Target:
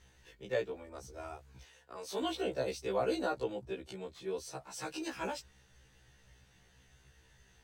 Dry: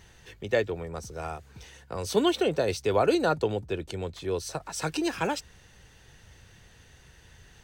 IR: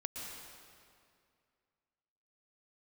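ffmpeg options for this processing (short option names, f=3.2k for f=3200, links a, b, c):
-filter_complex "[0:a]asettb=1/sr,asplit=3[a][b][c];[a]atrim=end=1.634[d];[b]atrim=start=1.63:end=2.22,asetpts=PTS-STARTPTS,afade=t=in:d=0.004:c=qsin,afade=t=out:st=0.586:d=0.004:c=qsin,bass=f=250:g=-15,treble=f=4k:g=-2[e];[c]atrim=start=2.216[f];[d][e]acrossfade=d=0.004:c1=hsin:c2=qsin[g];[g][f]acrossfade=d=0.004:c1=qsin:c2=hsin,afftfilt=real='re*1.73*eq(mod(b,3),0)':imag='im*1.73*eq(mod(b,3),0)':win_size=2048:overlap=0.75,volume=-7dB"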